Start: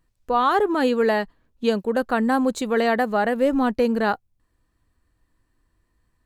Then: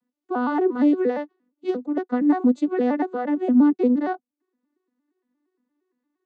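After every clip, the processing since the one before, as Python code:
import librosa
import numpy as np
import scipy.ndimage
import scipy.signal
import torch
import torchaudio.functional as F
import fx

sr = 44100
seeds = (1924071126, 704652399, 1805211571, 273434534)

y = fx.vocoder_arp(x, sr, chord='minor triad', root=59, every_ms=116)
y = fx.peak_eq(y, sr, hz=310.0, db=5.5, octaves=1.4)
y = F.gain(torch.from_numpy(y), -3.5).numpy()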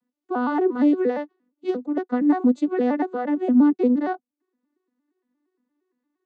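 y = x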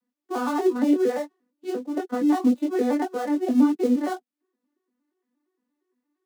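y = fx.dead_time(x, sr, dead_ms=0.088)
y = scipy.signal.sosfilt(scipy.signal.butter(2, 170.0, 'highpass', fs=sr, output='sos'), y)
y = fx.chorus_voices(y, sr, voices=4, hz=1.4, base_ms=21, depth_ms=3.2, mix_pct=40)
y = F.gain(torch.from_numpy(y), 1.5).numpy()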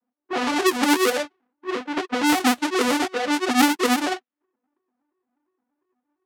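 y = fx.halfwave_hold(x, sr)
y = fx.highpass(y, sr, hz=450.0, slope=6)
y = fx.env_lowpass(y, sr, base_hz=1300.0, full_db=-16.0)
y = F.gain(torch.from_numpy(y), 1.5).numpy()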